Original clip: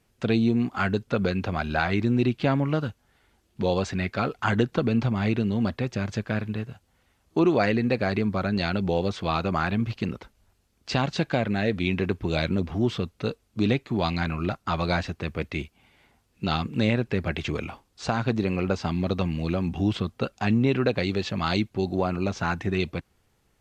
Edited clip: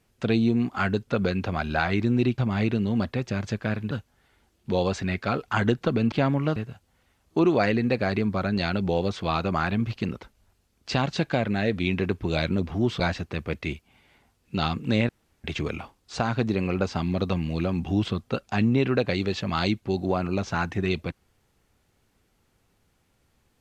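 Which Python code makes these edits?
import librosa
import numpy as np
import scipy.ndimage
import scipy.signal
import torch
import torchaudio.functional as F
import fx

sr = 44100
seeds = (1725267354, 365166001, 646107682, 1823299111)

y = fx.edit(x, sr, fx.swap(start_s=2.38, length_s=0.44, other_s=5.03, other_length_s=1.53),
    fx.cut(start_s=13.0, length_s=1.89),
    fx.room_tone_fill(start_s=16.98, length_s=0.35), tone=tone)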